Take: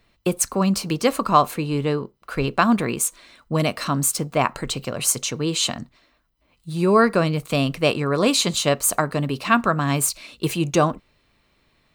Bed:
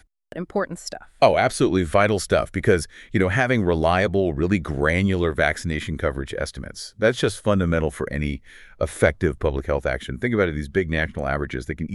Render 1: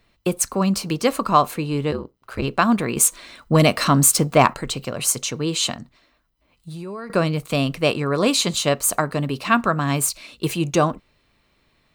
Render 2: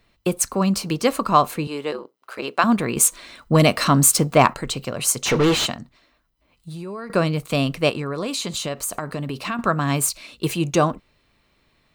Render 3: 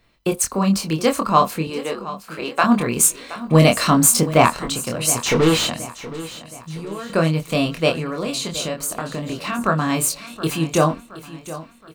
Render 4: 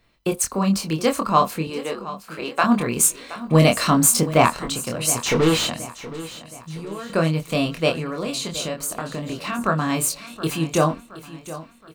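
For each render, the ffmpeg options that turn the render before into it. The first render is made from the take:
-filter_complex "[0:a]asplit=3[a][b][c];[a]afade=t=out:st=1.91:d=0.02[d];[b]aeval=exprs='val(0)*sin(2*PI*62*n/s)':c=same,afade=t=in:st=1.91:d=0.02,afade=t=out:st=2.41:d=0.02[e];[c]afade=t=in:st=2.41:d=0.02[f];[d][e][f]amix=inputs=3:normalize=0,asettb=1/sr,asplit=3[g][h][i];[g]atrim=end=2.964[j];[h]atrim=start=2.96:end=4.54,asetpts=PTS-STARTPTS,afade=t=in:d=0.004:c=qsin,afade=t=out:st=1.576:d=0.004:c=qsin,acontrast=76[k];[i]atrim=start=4.536[l];[j][k]acrossfade=d=0.004:c1=hsin:c2=qsin[m];[m][l]acrossfade=d=0.004:c1=qsin:c2=hsin,asettb=1/sr,asplit=3[n][o][p];[n]atrim=end=5.754[q];[o]atrim=start=5.75:end=7.1,asetpts=PTS-STARTPTS,afade=t=in:d=0.004:c=qsin,afade=t=out:st=1.346:d=0.004:c=qsin,acompressor=threshold=-31dB:ratio=6:attack=3.2:release=140:knee=1:detection=peak[r];[p]atrim=start=7.096[s];[q][r]acrossfade=d=0.004:c1=hsin:c2=qsin[t];[t][s]acrossfade=d=0.004:c1=qsin:c2=hsin"
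-filter_complex "[0:a]asettb=1/sr,asplit=3[a][b][c];[a]atrim=end=1.674[d];[b]atrim=start=1.67:end=2.64,asetpts=PTS-STARTPTS,afade=t=in:d=0.004:c=qsin,afade=t=out:st=0.966:d=0.004:c=qsin,highpass=400[e];[c]atrim=start=2.636[f];[d][e]acrossfade=d=0.004:c1=hsin:c2=qsin[g];[g][f]acrossfade=d=0.004:c1=qsin:c2=hsin,asplit=3[h][i][j];[h]afade=t=out:st=5.25:d=0.02[k];[i]asplit=2[l][m];[m]highpass=f=720:p=1,volume=32dB,asoftclip=type=tanh:threshold=-9dB[n];[l][n]amix=inputs=2:normalize=0,lowpass=f=1.9k:p=1,volume=-6dB,afade=t=in:st=5.25:d=0.02,afade=t=out:st=5.65:d=0.02[o];[j]afade=t=in:st=5.65:d=0.02[p];[k][o][p]amix=inputs=3:normalize=0,asettb=1/sr,asplit=3[q][r][s];[q]atrim=end=7.894[t];[r]atrim=start=7.89:end=9.59,asetpts=PTS-STARTPTS,afade=t=in:d=0.004:c=qsin,afade=t=out:st=1.696:d=0.004:c=qsin,acompressor=threshold=-23dB:ratio=5:attack=3.2:release=140:knee=1:detection=peak[u];[s]atrim=start=9.586[v];[t][u]acrossfade=d=0.004:c1=hsin:c2=qsin[w];[w][v]acrossfade=d=0.004:c1=qsin:c2=hsin"
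-filter_complex "[0:a]asplit=2[a][b];[b]adelay=25,volume=-4dB[c];[a][c]amix=inputs=2:normalize=0,aecho=1:1:721|1442|2163|2884:0.168|0.0772|0.0355|0.0163"
-af "volume=-2dB"

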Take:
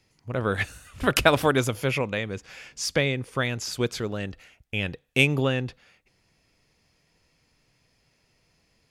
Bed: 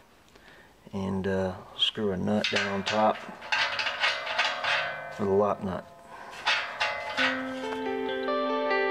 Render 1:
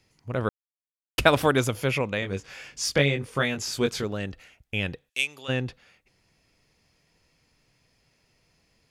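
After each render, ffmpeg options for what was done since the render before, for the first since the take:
-filter_complex "[0:a]asettb=1/sr,asplit=3[a][b][c];[a]atrim=end=2.204[d];[b]atrim=start=2.2:end=4.04,asetpts=PTS-STARTPTS,afade=t=in:d=0.004:c=qsin,afade=t=out:st=1.836:d=0.004:c=qsin,asplit=2[e][f];[f]adelay=21,volume=-4.5dB[g];[e][g]amix=inputs=2:normalize=0,atrim=end_sample=81144[h];[c]atrim=start=4.036[i];[d][h]acrossfade=d=0.004:c1=hsin:c2=qsin[j];[j][i]acrossfade=d=0.004:c1=qsin:c2=hsin,asplit=3[k][l][m];[k]afade=t=out:st=5.08:d=0.02[n];[l]bandpass=f=6.7k:t=q:w=0.64,afade=t=in:st=5.08:d=0.02,afade=t=out:st=5.48:d=0.02[o];[m]afade=t=in:st=5.48:d=0.02[p];[n][o][p]amix=inputs=3:normalize=0,asplit=3[q][r][s];[q]atrim=end=0.49,asetpts=PTS-STARTPTS,afade=t=out:st=0.486:d=0.004:c=hsin[t];[r]atrim=start=0.49:end=1.18,asetpts=PTS-STARTPTS,volume=0[u];[s]atrim=start=1.18,asetpts=PTS-STARTPTS,afade=t=in:d=0.004:c=hsin[v];[t][u][v]concat=n=3:v=0:a=1"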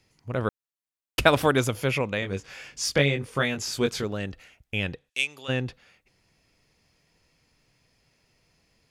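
-filter_complex "[0:a]asettb=1/sr,asplit=3[a][b][c];[a]atrim=end=4.854[d];[b]atrim=start=4.85:end=5.37,asetpts=PTS-STARTPTS,afade=t=in:d=0.004:c=qsin,afade=t=out:st=0.516:d=0.004:c=qsin,lowpass=10k[e];[c]atrim=start=5.366[f];[d][e]acrossfade=d=0.004:c1=hsin:c2=qsin[g];[g][f]acrossfade=d=0.004:c1=qsin:c2=hsin"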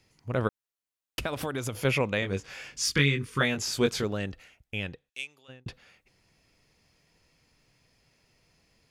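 -filter_complex "[0:a]asettb=1/sr,asplit=3[a][b][c];[a]atrim=end=0.474[d];[b]atrim=start=0.47:end=1.85,asetpts=PTS-STARTPTS,afade=t=in:d=0.004:c=qsin,afade=t=out:st=1.376:d=0.004:c=qsin,acompressor=threshold=-28dB:ratio=6:attack=3.2:release=140:knee=1:detection=peak[e];[c]atrim=start=1.846[f];[d][e]acrossfade=d=0.004:c1=hsin:c2=qsin[g];[g][f]acrossfade=d=0.004:c1=qsin:c2=hsin,asettb=1/sr,asplit=3[h][i][j];[h]atrim=end=2.774[k];[i]atrim=start=2.77:end=3.41,asetpts=PTS-STARTPTS,afade=t=in:d=0.004:c=qsin,afade=t=out:st=0.636:d=0.004:c=qsin,asuperstop=centerf=650:order=4:qfactor=0.97[l];[j]atrim=start=3.406[m];[k][l]acrossfade=d=0.004:c1=hsin:c2=qsin[n];[n][m]acrossfade=d=0.004:c1=qsin:c2=hsin,asplit=2[o][p];[o]atrim=end=5.66,asetpts=PTS-STARTPTS,afade=t=out:st=4.08:d=1.58[q];[p]atrim=start=5.66,asetpts=PTS-STARTPTS,afade=t=in:d=0.004:c=hsin[r];[q][r]concat=n=2:v=0:a=1"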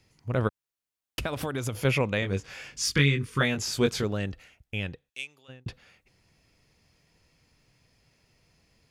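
-af "equalizer=f=82:w=0.56:g=4"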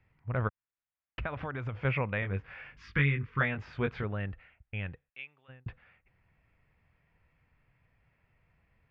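-af "lowpass=f=2.2k:w=0.5412,lowpass=f=2.2k:w=1.3066,equalizer=f=330:t=o:w=2.1:g=-10"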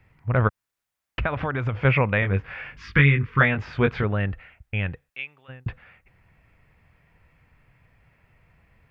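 -af "volume=10.5dB,alimiter=limit=-3dB:level=0:latency=1"

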